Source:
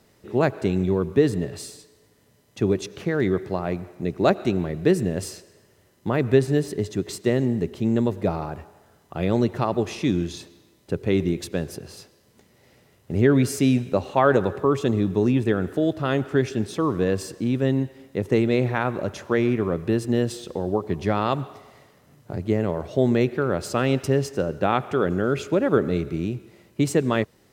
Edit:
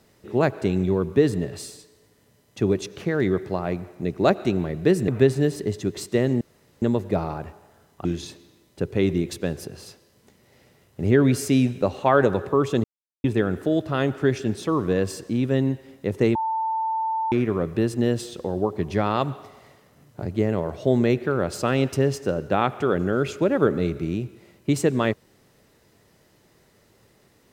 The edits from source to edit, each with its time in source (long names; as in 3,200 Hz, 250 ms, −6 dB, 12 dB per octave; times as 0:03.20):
0:05.08–0:06.20: remove
0:07.53–0:07.94: fill with room tone
0:09.17–0:10.16: remove
0:14.95–0:15.35: silence
0:18.46–0:19.43: beep over 890 Hz −22 dBFS